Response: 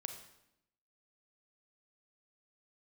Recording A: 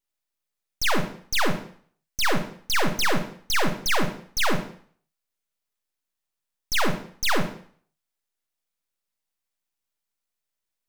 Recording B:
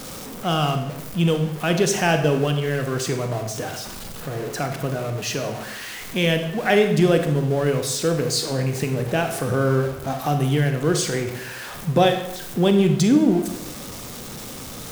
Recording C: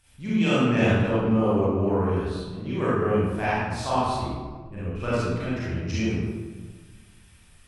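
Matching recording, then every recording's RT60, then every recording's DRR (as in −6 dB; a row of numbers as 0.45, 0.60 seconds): B; 0.50, 0.80, 1.5 seconds; 5.5, 5.5, −10.5 decibels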